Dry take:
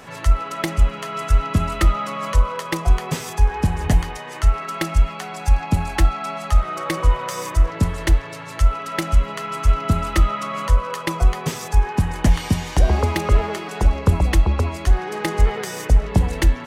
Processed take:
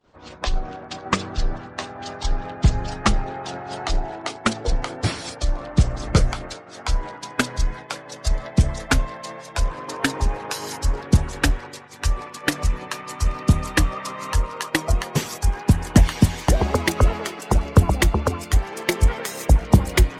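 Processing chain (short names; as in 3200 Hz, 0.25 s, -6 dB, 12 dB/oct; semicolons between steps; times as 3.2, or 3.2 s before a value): speed glide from 55% -> 110%; harmonic-percussive split harmonic -13 dB; expander -35 dBFS; gain +5 dB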